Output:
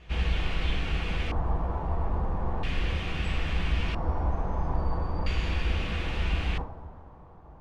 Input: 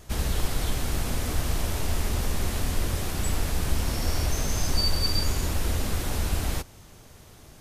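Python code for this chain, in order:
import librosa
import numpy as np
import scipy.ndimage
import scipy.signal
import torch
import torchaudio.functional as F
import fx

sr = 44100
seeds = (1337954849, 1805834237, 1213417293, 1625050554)

y = fx.rev_double_slope(x, sr, seeds[0], early_s=0.34, late_s=2.7, knee_db=-15, drr_db=0.0)
y = fx.filter_lfo_lowpass(y, sr, shape='square', hz=0.38, low_hz=950.0, high_hz=2700.0, q=2.7)
y = F.gain(torch.from_numpy(y), -6.0).numpy()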